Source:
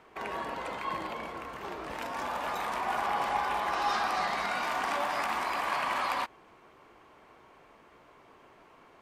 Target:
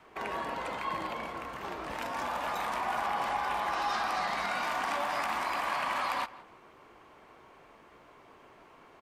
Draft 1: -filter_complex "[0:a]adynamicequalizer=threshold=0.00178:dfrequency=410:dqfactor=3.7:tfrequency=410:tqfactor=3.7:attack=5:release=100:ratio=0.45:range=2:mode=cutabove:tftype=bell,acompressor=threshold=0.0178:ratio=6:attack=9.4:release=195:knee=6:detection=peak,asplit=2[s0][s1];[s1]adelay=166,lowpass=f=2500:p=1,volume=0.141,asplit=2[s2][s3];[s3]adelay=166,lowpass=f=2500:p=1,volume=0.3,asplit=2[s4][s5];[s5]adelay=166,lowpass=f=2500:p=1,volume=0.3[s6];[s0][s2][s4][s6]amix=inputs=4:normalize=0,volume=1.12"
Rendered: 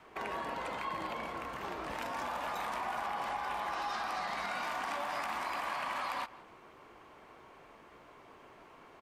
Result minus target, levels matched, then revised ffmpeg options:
compression: peak gain reduction +6 dB
-filter_complex "[0:a]adynamicequalizer=threshold=0.00178:dfrequency=410:dqfactor=3.7:tfrequency=410:tqfactor=3.7:attack=5:release=100:ratio=0.45:range=2:mode=cutabove:tftype=bell,acompressor=threshold=0.0422:ratio=6:attack=9.4:release=195:knee=6:detection=peak,asplit=2[s0][s1];[s1]adelay=166,lowpass=f=2500:p=1,volume=0.141,asplit=2[s2][s3];[s3]adelay=166,lowpass=f=2500:p=1,volume=0.3,asplit=2[s4][s5];[s5]adelay=166,lowpass=f=2500:p=1,volume=0.3[s6];[s0][s2][s4][s6]amix=inputs=4:normalize=0,volume=1.12"

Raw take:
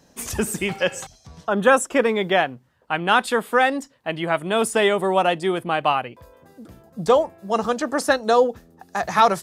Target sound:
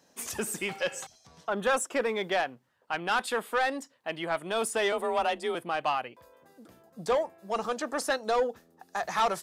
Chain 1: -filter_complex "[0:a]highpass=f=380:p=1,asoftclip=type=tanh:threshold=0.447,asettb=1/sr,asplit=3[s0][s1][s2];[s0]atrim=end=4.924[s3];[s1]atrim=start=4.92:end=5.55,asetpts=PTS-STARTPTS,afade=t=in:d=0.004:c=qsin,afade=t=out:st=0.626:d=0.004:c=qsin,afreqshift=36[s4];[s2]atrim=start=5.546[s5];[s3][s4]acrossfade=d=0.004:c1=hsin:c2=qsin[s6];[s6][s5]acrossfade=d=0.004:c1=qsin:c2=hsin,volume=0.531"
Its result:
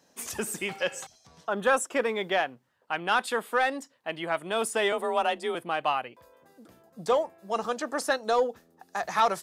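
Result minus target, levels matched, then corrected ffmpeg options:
saturation: distortion -9 dB
-filter_complex "[0:a]highpass=f=380:p=1,asoftclip=type=tanh:threshold=0.2,asettb=1/sr,asplit=3[s0][s1][s2];[s0]atrim=end=4.924[s3];[s1]atrim=start=4.92:end=5.55,asetpts=PTS-STARTPTS,afade=t=in:d=0.004:c=qsin,afade=t=out:st=0.626:d=0.004:c=qsin,afreqshift=36[s4];[s2]atrim=start=5.546[s5];[s3][s4]acrossfade=d=0.004:c1=hsin:c2=qsin[s6];[s6][s5]acrossfade=d=0.004:c1=qsin:c2=hsin,volume=0.531"

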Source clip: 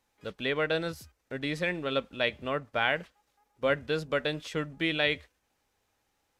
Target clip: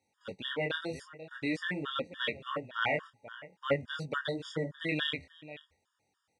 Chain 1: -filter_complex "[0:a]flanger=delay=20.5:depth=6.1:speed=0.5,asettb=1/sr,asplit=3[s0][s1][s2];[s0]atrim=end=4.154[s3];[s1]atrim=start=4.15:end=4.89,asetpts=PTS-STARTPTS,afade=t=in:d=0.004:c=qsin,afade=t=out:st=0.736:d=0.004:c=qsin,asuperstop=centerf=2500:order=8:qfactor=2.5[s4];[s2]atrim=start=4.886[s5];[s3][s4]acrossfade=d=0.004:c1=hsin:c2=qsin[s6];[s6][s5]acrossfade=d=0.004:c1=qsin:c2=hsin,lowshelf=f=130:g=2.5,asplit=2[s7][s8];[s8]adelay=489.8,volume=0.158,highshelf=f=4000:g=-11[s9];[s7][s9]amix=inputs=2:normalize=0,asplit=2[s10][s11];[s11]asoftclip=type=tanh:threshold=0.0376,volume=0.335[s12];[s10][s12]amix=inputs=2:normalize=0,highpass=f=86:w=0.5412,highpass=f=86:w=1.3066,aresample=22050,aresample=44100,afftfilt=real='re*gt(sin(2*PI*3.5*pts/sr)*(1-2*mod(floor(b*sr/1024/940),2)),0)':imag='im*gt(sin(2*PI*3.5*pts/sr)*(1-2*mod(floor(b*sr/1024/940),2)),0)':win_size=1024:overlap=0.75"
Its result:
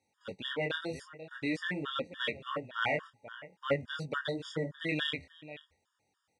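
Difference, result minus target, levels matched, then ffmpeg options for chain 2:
saturation: distortion +12 dB
-filter_complex "[0:a]flanger=delay=20.5:depth=6.1:speed=0.5,asettb=1/sr,asplit=3[s0][s1][s2];[s0]atrim=end=4.154[s3];[s1]atrim=start=4.15:end=4.89,asetpts=PTS-STARTPTS,afade=t=in:d=0.004:c=qsin,afade=t=out:st=0.736:d=0.004:c=qsin,asuperstop=centerf=2500:order=8:qfactor=2.5[s4];[s2]atrim=start=4.886[s5];[s3][s4]acrossfade=d=0.004:c1=hsin:c2=qsin[s6];[s6][s5]acrossfade=d=0.004:c1=qsin:c2=hsin,lowshelf=f=130:g=2.5,asplit=2[s7][s8];[s8]adelay=489.8,volume=0.158,highshelf=f=4000:g=-11[s9];[s7][s9]amix=inputs=2:normalize=0,asplit=2[s10][s11];[s11]asoftclip=type=tanh:threshold=0.119,volume=0.335[s12];[s10][s12]amix=inputs=2:normalize=0,highpass=f=86:w=0.5412,highpass=f=86:w=1.3066,aresample=22050,aresample=44100,afftfilt=real='re*gt(sin(2*PI*3.5*pts/sr)*(1-2*mod(floor(b*sr/1024/940),2)),0)':imag='im*gt(sin(2*PI*3.5*pts/sr)*(1-2*mod(floor(b*sr/1024/940),2)),0)':win_size=1024:overlap=0.75"

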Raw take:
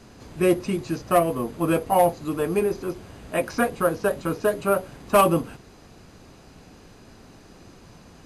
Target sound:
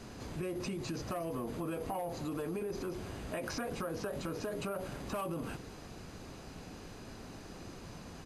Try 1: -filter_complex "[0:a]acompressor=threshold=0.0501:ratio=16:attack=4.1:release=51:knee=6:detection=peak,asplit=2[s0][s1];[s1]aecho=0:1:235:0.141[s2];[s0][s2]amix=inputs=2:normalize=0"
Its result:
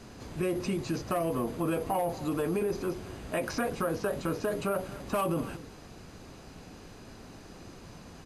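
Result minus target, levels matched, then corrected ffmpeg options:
compression: peak gain reduction -8.5 dB
-filter_complex "[0:a]acompressor=threshold=0.0178:ratio=16:attack=4.1:release=51:knee=6:detection=peak,asplit=2[s0][s1];[s1]aecho=0:1:235:0.141[s2];[s0][s2]amix=inputs=2:normalize=0"

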